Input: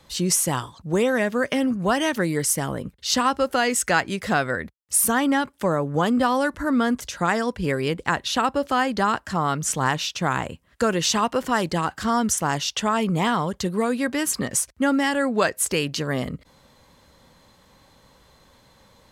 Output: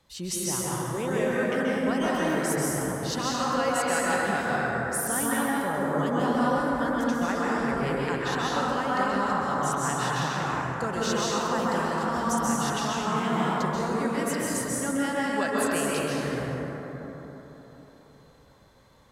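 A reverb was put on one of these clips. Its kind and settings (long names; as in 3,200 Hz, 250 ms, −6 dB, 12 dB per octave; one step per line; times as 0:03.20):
dense smooth reverb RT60 4 s, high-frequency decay 0.35×, pre-delay 120 ms, DRR −7 dB
level −11.5 dB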